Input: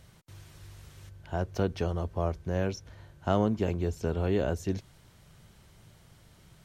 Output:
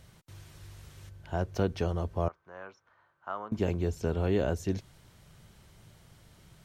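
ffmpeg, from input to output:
-filter_complex "[0:a]asettb=1/sr,asplit=3[a][b][c];[a]atrim=end=2.284[d];[b]atrim=start=2.28:end=3.52,asetpts=PTS-STARTPTS,afade=t=in:d=0.004:c=qsin,afade=t=out:st=1.236:d=0.004:c=qsin,bandpass=f=1.2k:t=q:w=3:csg=0[e];[c]atrim=start=3.516[f];[d][e]acrossfade=d=0.004:c1=hsin:c2=qsin[g];[g][f]acrossfade=d=0.004:c1=qsin:c2=hsin"

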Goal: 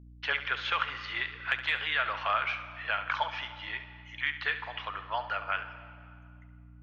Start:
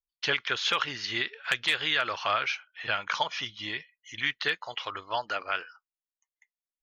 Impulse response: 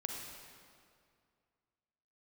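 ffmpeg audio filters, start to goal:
-filter_complex "[0:a]acrossover=split=580 3000:gain=0.112 1 0.0708[a][b][c];[a][b][c]amix=inputs=3:normalize=0,aeval=exprs='val(0)+0.00316*(sin(2*PI*60*n/s)+sin(2*PI*2*60*n/s)/2+sin(2*PI*3*60*n/s)/3+sin(2*PI*4*60*n/s)/4+sin(2*PI*5*60*n/s)/5)':c=same,asplit=2[d][e];[1:a]atrim=start_sample=2205,adelay=69[f];[e][f]afir=irnorm=-1:irlink=0,volume=-10dB[g];[d][g]amix=inputs=2:normalize=0"

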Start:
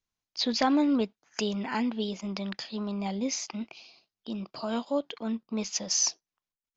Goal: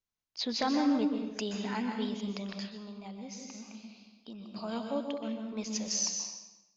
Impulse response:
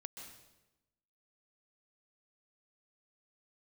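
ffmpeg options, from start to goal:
-filter_complex "[1:a]atrim=start_sample=2205[a];[0:a][a]afir=irnorm=-1:irlink=0,asplit=3[b][c][d];[b]afade=t=out:st=2.69:d=0.02[e];[c]acompressor=threshold=-45dB:ratio=2.5,afade=t=in:st=2.69:d=0.02,afade=t=out:st=4.55:d=0.02[f];[d]afade=t=in:st=4.55:d=0.02[g];[e][f][g]amix=inputs=3:normalize=0"

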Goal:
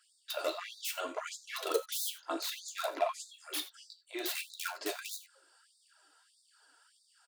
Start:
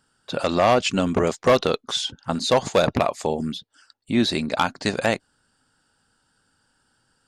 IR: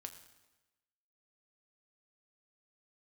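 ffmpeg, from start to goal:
-filter_complex "[0:a]bandreject=f=60:t=h:w=6,bandreject=f=120:t=h:w=6,bandreject=f=180:t=h:w=6,bandreject=f=240:t=h:w=6,bandreject=f=300:t=h:w=6,bandreject=f=360:t=h:w=6,bandreject=f=420:t=h:w=6,bandreject=f=480:t=h:w=6,bandreject=f=540:t=h:w=6,aecho=1:1:3:0.45,areverse,acompressor=threshold=-30dB:ratio=8,areverse,flanger=delay=9:depth=9.9:regen=6:speed=0.62:shape=triangular,acrossover=split=1300[a][b];[b]aeval=exprs='(mod(53.1*val(0)+1,2)-1)/53.1':c=same[c];[a][c]amix=inputs=2:normalize=0,aphaser=in_gain=1:out_gain=1:delay=4.6:decay=0.52:speed=1.7:type=triangular[d];[1:a]atrim=start_sample=2205,atrim=end_sample=4410[e];[d][e]afir=irnorm=-1:irlink=0,afftfilt=real='re*gte(b*sr/1024,280*pow(3600/280,0.5+0.5*sin(2*PI*1.6*pts/sr)))':imag='im*gte(b*sr/1024,280*pow(3600/280,0.5+0.5*sin(2*PI*1.6*pts/sr)))':win_size=1024:overlap=0.75,volume=8.5dB"

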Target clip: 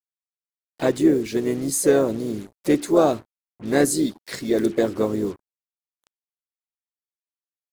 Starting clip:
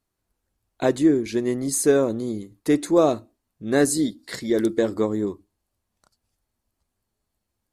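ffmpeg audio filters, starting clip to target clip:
-filter_complex "[0:a]asplit=4[a][b][c][d];[b]asetrate=33038,aresample=44100,atempo=1.33484,volume=-18dB[e];[c]asetrate=52444,aresample=44100,atempo=0.840896,volume=-11dB[f];[d]asetrate=55563,aresample=44100,atempo=0.793701,volume=-14dB[g];[a][e][f][g]amix=inputs=4:normalize=0,acrusher=bits=6:mix=0:aa=0.5"

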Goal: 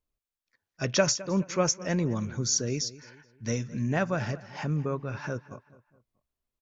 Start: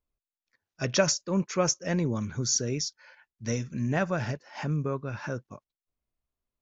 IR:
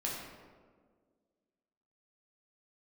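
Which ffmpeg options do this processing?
-filter_complex "[0:a]asplit=2[a][b];[b]adelay=212,lowpass=f=3.1k:p=1,volume=-17.5dB,asplit=2[c][d];[d]adelay=212,lowpass=f=3.1k:p=1,volume=0.42,asplit=2[e][f];[f]adelay=212,lowpass=f=3.1k:p=1,volume=0.42[g];[a][c][e][g]amix=inputs=4:normalize=0"

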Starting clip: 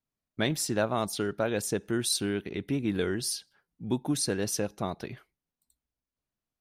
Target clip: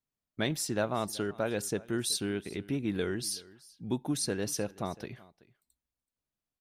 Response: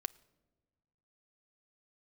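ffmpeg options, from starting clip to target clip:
-af "aecho=1:1:378:0.0841,volume=-3dB"

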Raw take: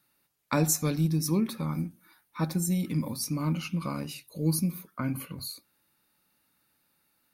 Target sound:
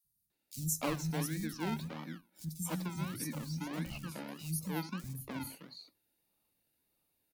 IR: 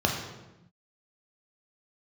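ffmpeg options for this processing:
-filter_complex "[0:a]acrossover=split=130|2000[a][b][c];[b]acrusher=samples=30:mix=1:aa=0.000001:lfo=1:lforange=18:lforate=1.6[d];[a][d][c]amix=inputs=3:normalize=0,acrossover=split=190|5100[e][f][g];[e]adelay=40[h];[f]adelay=300[i];[h][i][g]amix=inputs=3:normalize=0,volume=-7dB"

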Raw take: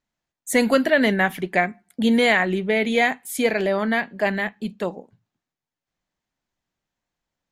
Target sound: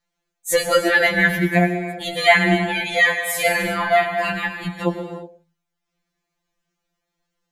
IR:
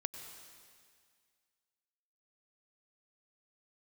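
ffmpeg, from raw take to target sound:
-filter_complex "[0:a]asettb=1/sr,asplit=3[a][b][c];[a]atrim=end=3.154[d];[b]atrim=start=3.15:end=4.32,asetpts=PTS-STARTPTS,afade=t=in:d=0.004:c=qsin,afade=t=out:st=1.166:d=0.004:c=qsin,asplit=2[e][f];[f]adelay=46,volume=-5dB[g];[e][g]amix=inputs=2:normalize=0,atrim=end_sample=51597[h];[c]atrim=start=4.316[i];[d][h]acrossfade=d=0.004:c1=hsin:c2=qsin[j];[j][i]acrossfade=d=0.004:c1=qsin:c2=hsin[k];[1:a]atrim=start_sample=2205,afade=t=out:st=0.43:d=0.01,atrim=end_sample=19404[l];[k][l]afir=irnorm=-1:irlink=0,afftfilt=real='re*2.83*eq(mod(b,8),0)':imag='im*2.83*eq(mod(b,8),0)':win_size=2048:overlap=0.75,volume=8.5dB"

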